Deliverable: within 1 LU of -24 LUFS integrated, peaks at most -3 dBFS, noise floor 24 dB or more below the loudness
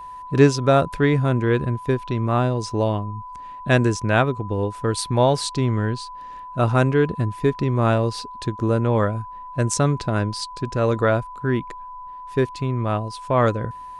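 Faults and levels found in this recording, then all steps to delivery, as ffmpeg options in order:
steady tone 1000 Hz; tone level -34 dBFS; loudness -21.5 LUFS; peak -1.5 dBFS; loudness target -24.0 LUFS
-> -af "bandreject=f=1k:w=30"
-af "volume=-2.5dB"

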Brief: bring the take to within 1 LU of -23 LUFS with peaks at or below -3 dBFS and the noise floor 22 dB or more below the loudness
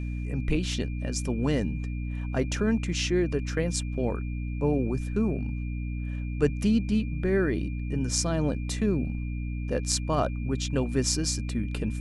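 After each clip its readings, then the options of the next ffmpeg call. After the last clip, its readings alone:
hum 60 Hz; harmonics up to 300 Hz; hum level -29 dBFS; steady tone 2400 Hz; tone level -48 dBFS; loudness -28.5 LUFS; peak -8.0 dBFS; loudness target -23.0 LUFS
-> -af "bandreject=f=60:t=h:w=6,bandreject=f=120:t=h:w=6,bandreject=f=180:t=h:w=6,bandreject=f=240:t=h:w=6,bandreject=f=300:t=h:w=6"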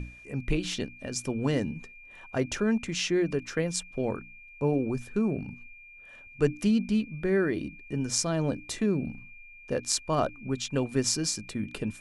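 hum none; steady tone 2400 Hz; tone level -48 dBFS
-> -af "bandreject=f=2.4k:w=30"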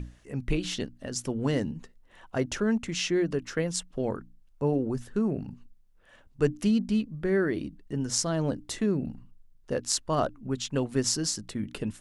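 steady tone none; loudness -29.5 LUFS; peak -7.0 dBFS; loudness target -23.0 LUFS
-> -af "volume=6.5dB,alimiter=limit=-3dB:level=0:latency=1"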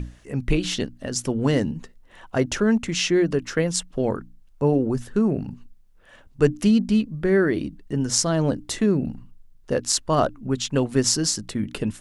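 loudness -23.0 LUFS; peak -3.0 dBFS; noise floor -52 dBFS

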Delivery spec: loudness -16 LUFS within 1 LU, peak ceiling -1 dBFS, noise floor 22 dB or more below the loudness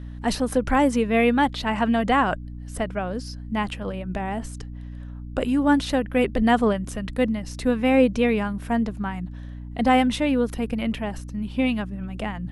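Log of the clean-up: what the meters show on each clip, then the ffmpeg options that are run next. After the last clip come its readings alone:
hum 60 Hz; harmonics up to 300 Hz; hum level -33 dBFS; loudness -23.5 LUFS; peak -6.5 dBFS; loudness target -16.0 LUFS
-> -af "bandreject=f=60:t=h:w=4,bandreject=f=120:t=h:w=4,bandreject=f=180:t=h:w=4,bandreject=f=240:t=h:w=4,bandreject=f=300:t=h:w=4"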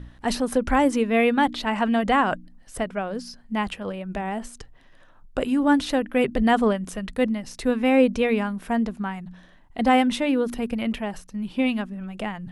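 hum none; loudness -24.0 LUFS; peak -6.5 dBFS; loudness target -16.0 LUFS
-> -af "volume=8dB,alimiter=limit=-1dB:level=0:latency=1"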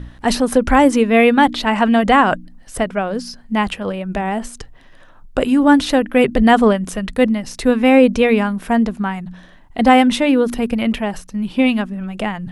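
loudness -16.0 LUFS; peak -1.0 dBFS; noise floor -43 dBFS

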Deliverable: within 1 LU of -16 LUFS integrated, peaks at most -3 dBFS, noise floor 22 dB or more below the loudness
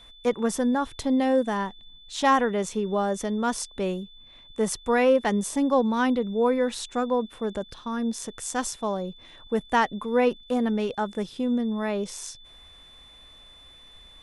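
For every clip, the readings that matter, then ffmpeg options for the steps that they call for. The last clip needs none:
steady tone 3500 Hz; tone level -49 dBFS; loudness -26.0 LUFS; peak -10.5 dBFS; loudness target -16.0 LUFS
-> -af "bandreject=f=3.5k:w=30"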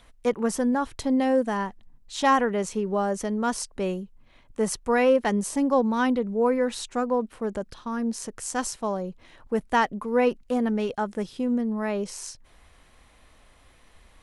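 steady tone none; loudness -26.0 LUFS; peak -10.0 dBFS; loudness target -16.0 LUFS
-> -af "volume=10dB,alimiter=limit=-3dB:level=0:latency=1"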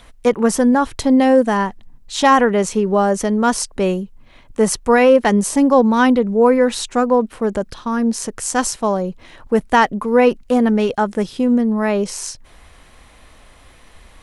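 loudness -16.5 LUFS; peak -3.0 dBFS; noise floor -46 dBFS

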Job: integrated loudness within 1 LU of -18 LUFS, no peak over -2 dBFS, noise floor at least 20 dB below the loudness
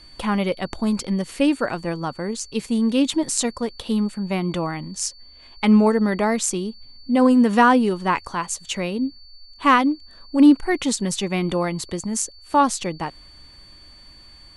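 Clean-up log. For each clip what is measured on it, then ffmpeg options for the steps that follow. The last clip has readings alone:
steady tone 4500 Hz; tone level -46 dBFS; loudness -21.0 LUFS; peak -3.5 dBFS; loudness target -18.0 LUFS
-> -af "bandreject=f=4.5k:w=30"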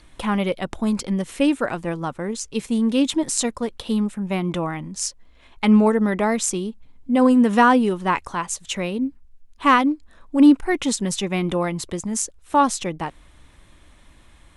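steady tone none; loudness -21.0 LUFS; peak -3.5 dBFS; loudness target -18.0 LUFS
-> -af "volume=3dB,alimiter=limit=-2dB:level=0:latency=1"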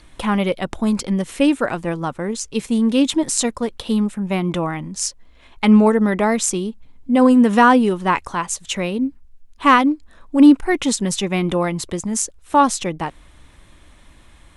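loudness -18.0 LUFS; peak -2.0 dBFS; noise floor -49 dBFS

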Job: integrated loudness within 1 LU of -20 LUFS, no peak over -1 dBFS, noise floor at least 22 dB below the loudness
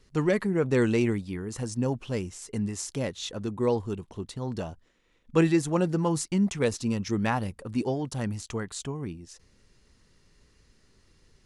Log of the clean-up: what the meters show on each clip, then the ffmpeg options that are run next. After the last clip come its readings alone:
loudness -28.5 LUFS; peak -8.5 dBFS; loudness target -20.0 LUFS
-> -af "volume=8.5dB,alimiter=limit=-1dB:level=0:latency=1"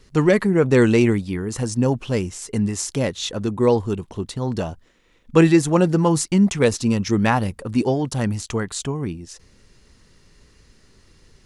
loudness -20.5 LUFS; peak -1.0 dBFS; noise floor -56 dBFS

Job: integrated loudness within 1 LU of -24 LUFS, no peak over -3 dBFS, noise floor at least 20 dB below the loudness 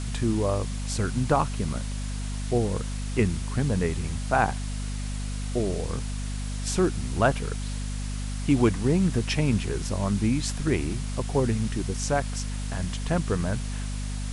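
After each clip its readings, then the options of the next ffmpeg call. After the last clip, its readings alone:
hum 50 Hz; harmonics up to 250 Hz; hum level -28 dBFS; noise floor -31 dBFS; noise floor target -48 dBFS; loudness -27.5 LUFS; peak -8.0 dBFS; loudness target -24.0 LUFS
-> -af "bandreject=f=50:t=h:w=4,bandreject=f=100:t=h:w=4,bandreject=f=150:t=h:w=4,bandreject=f=200:t=h:w=4,bandreject=f=250:t=h:w=4"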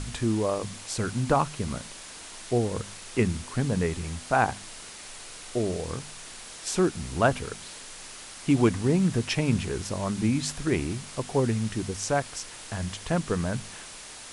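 hum none; noise floor -43 dBFS; noise floor target -48 dBFS
-> -af "afftdn=nr=6:nf=-43"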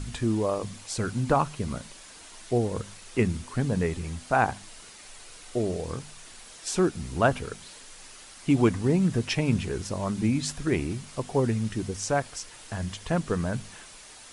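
noise floor -48 dBFS; loudness -28.0 LUFS; peak -8.0 dBFS; loudness target -24.0 LUFS
-> -af "volume=4dB"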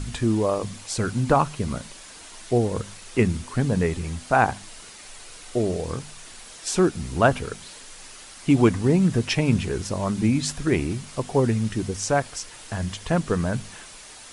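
loudness -24.0 LUFS; peak -4.0 dBFS; noise floor -44 dBFS

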